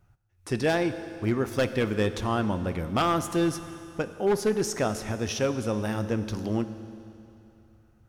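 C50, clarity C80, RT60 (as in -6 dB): 11.5 dB, 12.0 dB, 2.8 s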